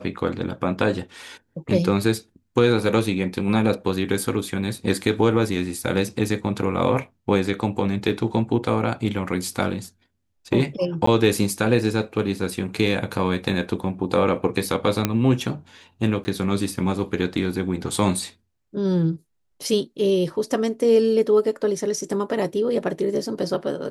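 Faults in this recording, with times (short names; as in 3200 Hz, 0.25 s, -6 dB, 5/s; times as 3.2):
11.06–11.07 gap 14 ms
15.05 pop -5 dBFS
16.24–16.25 gap 10 ms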